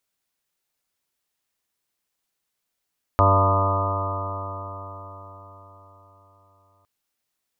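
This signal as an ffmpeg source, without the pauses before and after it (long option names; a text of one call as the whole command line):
ffmpeg -f lavfi -i "aevalsrc='0.141*pow(10,-3*t/4.62)*sin(2*PI*95.65*t)+0.0168*pow(10,-3*t/4.62)*sin(2*PI*191.57*t)+0.0398*pow(10,-3*t/4.62)*sin(2*PI*288.04*t)+0.0282*pow(10,-3*t/4.62)*sin(2*PI*385.33*t)+0.0335*pow(10,-3*t/4.62)*sin(2*PI*483.7*t)+0.0794*pow(10,-3*t/4.62)*sin(2*PI*583.43*t)+0.075*pow(10,-3*t/4.62)*sin(2*PI*684.76*t)+0.0178*pow(10,-3*t/4.62)*sin(2*PI*787.94*t)+0.0631*pow(10,-3*t/4.62)*sin(2*PI*893.23*t)+0.0841*pow(10,-3*t/4.62)*sin(2*PI*1000.84*t)+0.0501*pow(10,-3*t/4.62)*sin(2*PI*1111*t)+0.119*pow(10,-3*t/4.62)*sin(2*PI*1223.93*t)':duration=3.66:sample_rate=44100" out.wav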